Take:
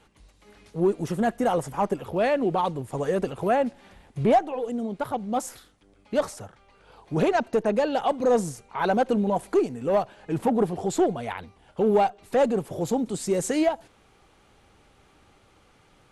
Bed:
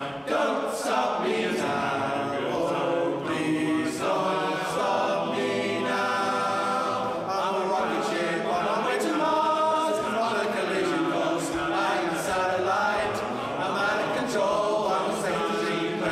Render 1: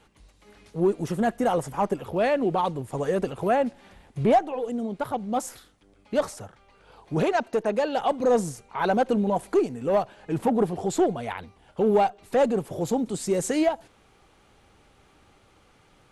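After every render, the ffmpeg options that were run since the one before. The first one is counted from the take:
-filter_complex "[0:a]asettb=1/sr,asplit=3[a][b][c];[a]atrim=end=7.224[d];[b]atrim=start=7.22:end=7.97,asetpts=PTS-STARTPTS,afade=t=in:d=0.004:c=qsin,afade=t=out:st=0.746:d=0.004:c=qsin,lowshelf=f=220:g=-8[e];[c]atrim=start=7.966[f];[d][e]acrossfade=d=0.004:c1=hsin:c2=qsin[g];[g][f]acrossfade=d=0.004:c1=qsin:c2=hsin"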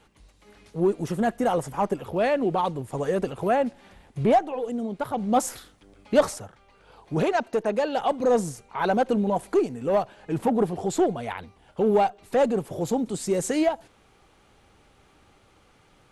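-filter_complex "[0:a]asettb=1/sr,asplit=3[a][b][c];[a]atrim=end=5.174[d];[b]atrim=start=5.17:end=6.38,asetpts=PTS-STARTPTS,afade=t=in:d=0.004:c=qsin,afade=t=out:st=1.206:d=0.004:c=qsin,acontrast=35[e];[c]atrim=start=6.376[f];[d][e]acrossfade=d=0.004:c1=hsin:c2=qsin[g];[g][f]acrossfade=d=0.004:c1=qsin:c2=hsin"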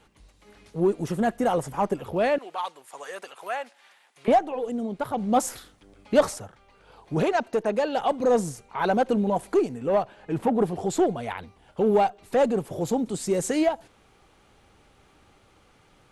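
-filter_complex "[0:a]asettb=1/sr,asplit=3[a][b][c];[a]atrim=end=2.384[d];[b]atrim=start=2.38:end=4.28,asetpts=PTS-STARTPTS,afade=t=in:d=0.004:c=qsin,afade=t=out:st=1.896:d=0.004:c=qsin,highpass=1.1k[e];[c]atrim=start=4.276[f];[d][e]acrossfade=d=0.004:c1=hsin:c2=qsin[g];[g][f]acrossfade=d=0.004:c1=qsin:c2=hsin,asettb=1/sr,asplit=3[h][i][j];[h]atrim=end=9.784[k];[i]atrim=start=9.78:end=10.61,asetpts=PTS-STARTPTS,afade=t=in:d=0.004:c=qsin,afade=t=out:st=0.826:d=0.004:c=qsin,bass=f=250:g=-1,treble=f=4k:g=-5[l];[j]atrim=start=10.606[m];[k][l]acrossfade=d=0.004:c1=hsin:c2=qsin[n];[n][m]acrossfade=d=0.004:c1=qsin:c2=hsin"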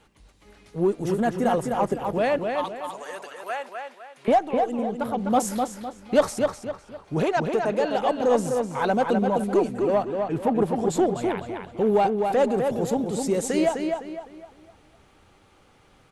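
-filter_complex "[0:a]asplit=2[a][b];[b]adelay=254,lowpass=f=4.3k:p=1,volume=-4.5dB,asplit=2[c][d];[d]adelay=254,lowpass=f=4.3k:p=1,volume=0.37,asplit=2[e][f];[f]adelay=254,lowpass=f=4.3k:p=1,volume=0.37,asplit=2[g][h];[h]adelay=254,lowpass=f=4.3k:p=1,volume=0.37,asplit=2[i][j];[j]adelay=254,lowpass=f=4.3k:p=1,volume=0.37[k];[a][c][e][g][i][k]amix=inputs=6:normalize=0"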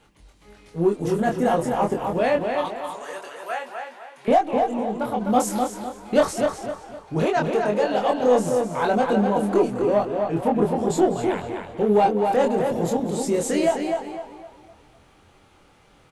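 -filter_complex "[0:a]asplit=2[a][b];[b]adelay=24,volume=-3dB[c];[a][c]amix=inputs=2:normalize=0,asplit=4[d][e][f][g];[e]adelay=201,afreqshift=100,volume=-16dB[h];[f]adelay=402,afreqshift=200,volume=-24.6dB[i];[g]adelay=603,afreqshift=300,volume=-33.3dB[j];[d][h][i][j]amix=inputs=4:normalize=0"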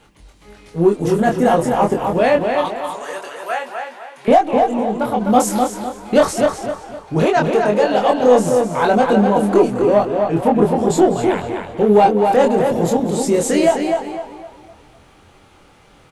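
-af "volume=6.5dB,alimiter=limit=-2dB:level=0:latency=1"

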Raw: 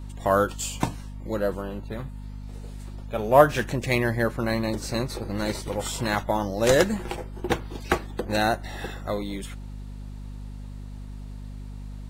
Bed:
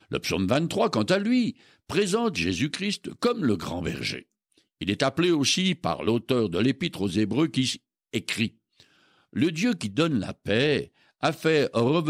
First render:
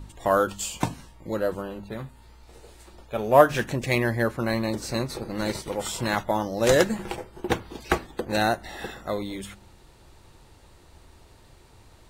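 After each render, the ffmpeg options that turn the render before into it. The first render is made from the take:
-af "bandreject=f=50:t=h:w=4,bandreject=f=100:t=h:w=4,bandreject=f=150:t=h:w=4,bandreject=f=200:t=h:w=4,bandreject=f=250:t=h:w=4"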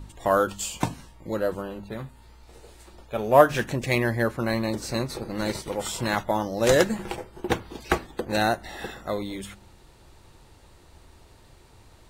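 -af anull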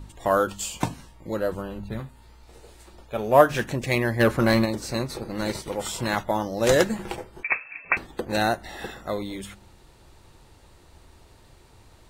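-filter_complex "[0:a]asettb=1/sr,asplit=3[a][b][c];[a]atrim=end=1.364[d];[b]atrim=start=1.36:end=2,asetpts=PTS-STARTPTS,afade=t=in:d=0.004:c=qsin,afade=t=out:st=0.636:d=0.004:c=qsin,asubboost=boost=10:cutoff=230[e];[c]atrim=start=1.996[f];[d][e]acrossfade=d=0.004:c1=hsin:c2=qsin[g];[g][f]acrossfade=d=0.004:c1=qsin:c2=hsin,asplit=3[h][i][j];[h]afade=t=out:st=4.19:d=0.02[k];[i]aeval=exprs='0.237*sin(PI/2*1.58*val(0)/0.237)':c=same,afade=t=in:st=4.19:d=0.02,afade=t=out:st=4.64:d=0.02[l];[j]afade=t=in:st=4.64:d=0.02[m];[k][l][m]amix=inputs=3:normalize=0,asettb=1/sr,asplit=3[n][o][p];[n]atrim=end=7.434[q];[o]atrim=start=7.43:end=7.97,asetpts=PTS-STARTPTS,afade=t=in:d=0.004:c=qsin,afade=t=out:st=0.536:d=0.004:c=qsin,lowpass=f=2.3k:t=q:w=0.5098,lowpass=f=2.3k:t=q:w=0.6013,lowpass=f=2.3k:t=q:w=0.9,lowpass=f=2.3k:t=q:w=2.563,afreqshift=-2700[r];[p]atrim=start=7.966[s];[q][r]acrossfade=d=0.004:c1=hsin:c2=qsin[t];[t][s]acrossfade=d=0.004:c1=qsin:c2=hsin"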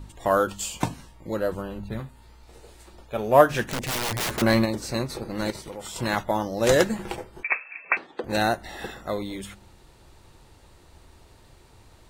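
-filter_complex "[0:a]asettb=1/sr,asplit=3[a][b][c];[a]atrim=end=3.624[d];[b]atrim=start=3.62:end=4.42,asetpts=PTS-STARTPTS,afade=t=in:d=0.004:c=qsin,afade=t=out:st=0.796:d=0.004:c=qsin,aeval=exprs='(mod(13.3*val(0)+1,2)-1)/13.3':c=same[e];[c]atrim=start=4.416[f];[d][e]acrossfade=d=0.004:c1=hsin:c2=qsin[g];[g][f]acrossfade=d=0.004:c1=qsin:c2=hsin,asettb=1/sr,asplit=3[h][i][j];[h]atrim=end=5.504[k];[i]atrim=start=5.5:end=5.96,asetpts=PTS-STARTPTS,afade=t=in:d=0.004:c=qsin,afade=t=out:st=0.456:d=0.004:c=qsin,acompressor=threshold=-36dB:ratio=2.5:attack=3.2:release=140:knee=1:detection=peak[l];[j]atrim=start=5.956[m];[k][l]acrossfade=d=0.004:c1=hsin:c2=qsin[n];[n][m]acrossfade=d=0.004:c1=qsin:c2=hsin,asettb=1/sr,asplit=3[o][p][q];[o]atrim=end=7.484[r];[p]atrim=start=7.48:end=8.24,asetpts=PTS-STARTPTS,afade=t=in:d=0.004:c=qsin,afade=t=out:st=0.756:d=0.004:c=qsin,highpass=330,lowpass=3.9k[s];[q]atrim=start=8.236[t];[r][s]acrossfade=d=0.004:c1=hsin:c2=qsin[u];[u][t]acrossfade=d=0.004:c1=qsin:c2=hsin"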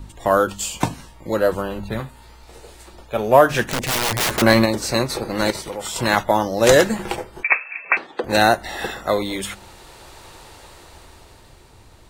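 -filter_complex "[0:a]acrossover=split=410[a][b];[b]dynaudnorm=f=160:g=17:m=11.5dB[c];[a][c]amix=inputs=2:normalize=0,alimiter=level_in=4.5dB:limit=-1dB:release=50:level=0:latency=1"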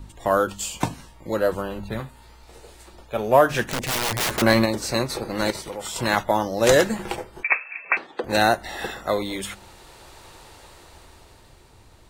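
-af "volume=-3.5dB"

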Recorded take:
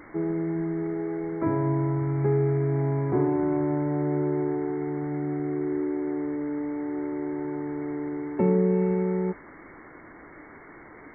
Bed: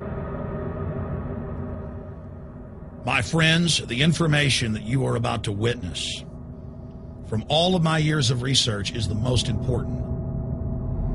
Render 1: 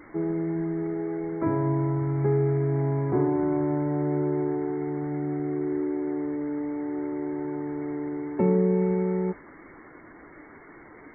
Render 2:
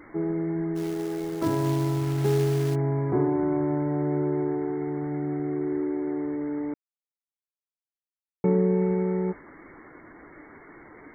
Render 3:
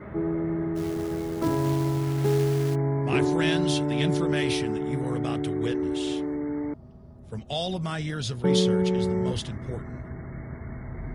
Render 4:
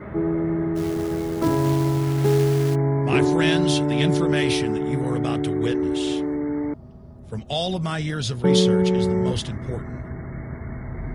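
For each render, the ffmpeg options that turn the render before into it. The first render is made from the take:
-af "afftdn=nr=6:nf=-48"
-filter_complex "[0:a]asplit=3[a][b][c];[a]afade=t=out:st=0.75:d=0.02[d];[b]acrusher=bits=4:mode=log:mix=0:aa=0.000001,afade=t=in:st=0.75:d=0.02,afade=t=out:st=2.74:d=0.02[e];[c]afade=t=in:st=2.74:d=0.02[f];[d][e][f]amix=inputs=3:normalize=0,asplit=3[g][h][i];[g]atrim=end=6.74,asetpts=PTS-STARTPTS,afade=t=out:st=6.736:d=0.004:c=hsin[j];[h]atrim=start=6.74:end=8.44,asetpts=PTS-STARTPTS,volume=0[k];[i]atrim=start=8.44,asetpts=PTS-STARTPTS,afade=t=in:d=0.004:c=hsin[l];[j][k][l]concat=n=3:v=0:a=1"
-filter_complex "[1:a]volume=-9.5dB[a];[0:a][a]amix=inputs=2:normalize=0"
-af "volume=4.5dB"

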